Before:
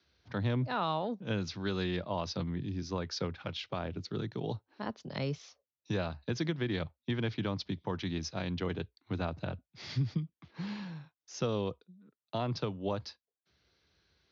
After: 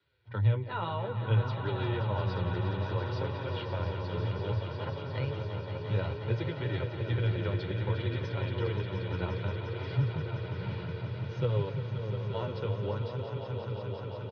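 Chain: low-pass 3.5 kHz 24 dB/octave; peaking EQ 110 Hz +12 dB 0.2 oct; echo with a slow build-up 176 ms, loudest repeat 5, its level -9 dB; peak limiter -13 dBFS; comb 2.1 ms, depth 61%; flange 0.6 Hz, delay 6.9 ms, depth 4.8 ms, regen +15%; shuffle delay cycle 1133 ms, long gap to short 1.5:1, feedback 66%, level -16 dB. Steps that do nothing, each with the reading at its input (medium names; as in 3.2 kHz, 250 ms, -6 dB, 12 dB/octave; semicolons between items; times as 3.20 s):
peak limiter -13 dBFS: peak at its input -15.5 dBFS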